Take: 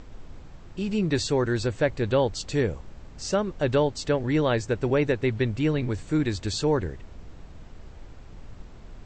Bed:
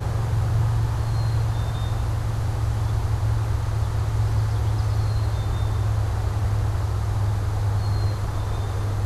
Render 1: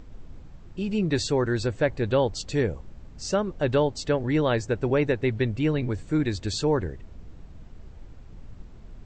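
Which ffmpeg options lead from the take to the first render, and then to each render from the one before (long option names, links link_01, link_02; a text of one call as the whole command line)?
ffmpeg -i in.wav -af "afftdn=noise_reduction=6:noise_floor=-45" out.wav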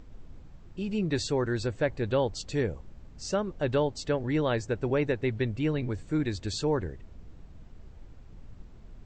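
ffmpeg -i in.wav -af "volume=-4dB" out.wav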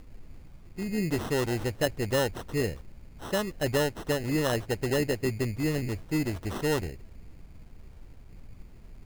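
ffmpeg -i in.wav -af "acrusher=samples=19:mix=1:aa=0.000001" out.wav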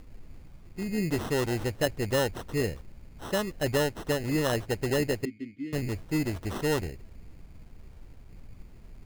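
ffmpeg -i in.wav -filter_complex "[0:a]asettb=1/sr,asplit=3[link_01][link_02][link_03];[link_01]atrim=end=5.254[link_04];[link_02]atrim=start=5.25:end=5.73,asetpts=PTS-STARTPTS,afade=type=in:duration=0.004:curve=qsin,afade=type=out:start_time=0.476:duration=0.004:curve=qsin,asplit=3[link_05][link_06][link_07];[link_05]bandpass=frequency=270:width_type=q:width=8,volume=0dB[link_08];[link_06]bandpass=frequency=2290:width_type=q:width=8,volume=-6dB[link_09];[link_07]bandpass=frequency=3010:width_type=q:width=8,volume=-9dB[link_10];[link_08][link_09][link_10]amix=inputs=3:normalize=0[link_11];[link_03]atrim=start=5.726[link_12];[link_04][link_11]acrossfade=duration=0.004:curve1=hsin:curve2=qsin[link_13];[link_13][link_12]acrossfade=duration=0.004:curve1=qsin:curve2=hsin" out.wav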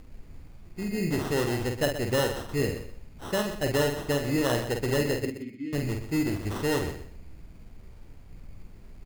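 ffmpeg -i in.wav -filter_complex "[0:a]asplit=2[link_01][link_02];[link_02]adelay=49,volume=-5.5dB[link_03];[link_01][link_03]amix=inputs=2:normalize=0,aecho=1:1:124|248|372:0.282|0.062|0.0136" out.wav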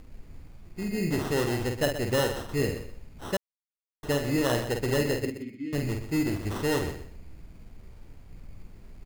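ffmpeg -i in.wav -filter_complex "[0:a]asplit=3[link_01][link_02][link_03];[link_01]atrim=end=3.37,asetpts=PTS-STARTPTS,afade=type=out:start_time=3.366:duration=0.004:curve=hsin[link_04];[link_02]atrim=start=3.37:end=4.03,asetpts=PTS-STARTPTS,volume=0[link_05];[link_03]atrim=start=4.03,asetpts=PTS-STARTPTS,afade=type=in:duration=0.004:curve=hsin[link_06];[link_04][link_05][link_06]concat=n=3:v=0:a=1" out.wav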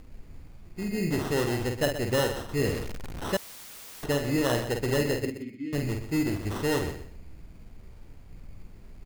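ffmpeg -i in.wav -filter_complex "[0:a]asettb=1/sr,asplit=3[link_01][link_02][link_03];[link_01]atrim=end=2.654[link_04];[link_02]atrim=start=2.65:end=4.06,asetpts=PTS-STARTPTS,afade=type=in:duration=0.004:curve=qsin,afade=type=out:start_time=1.406:duration=0.004:curve=qsin,aeval=exprs='val(0)+0.5*0.0224*sgn(val(0))':channel_layout=same[link_05];[link_03]atrim=start=4.056[link_06];[link_04][link_05]acrossfade=duration=0.004:curve1=hsin:curve2=qsin[link_07];[link_07][link_06]acrossfade=duration=0.004:curve1=qsin:curve2=hsin" out.wav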